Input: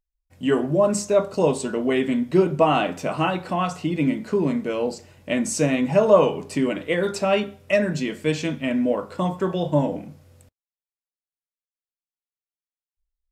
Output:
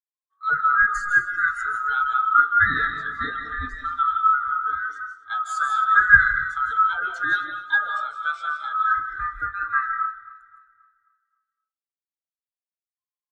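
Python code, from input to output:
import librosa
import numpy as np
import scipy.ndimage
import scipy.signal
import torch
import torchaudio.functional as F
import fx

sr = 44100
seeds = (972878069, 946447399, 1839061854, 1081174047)

y = fx.band_swap(x, sr, width_hz=1000)
y = fx.lowpass(y, sr, hz=fx.line((4.31, 1600.0), (4.84, 3100.0)), slope=6, at=(4.31, 4.84), fade=0.02)
y = fx.echo_feedback(y, sr, ms=264, feedback_pct=55, wet_db=-13)
y = fx.rev_freeverb(y, sr, rt60_s=0.51, hf_ratio=0.65, predelay_ms=120, drr_db=3.5)
y = fx.spectral_expand(y, sr, expansion=1.5)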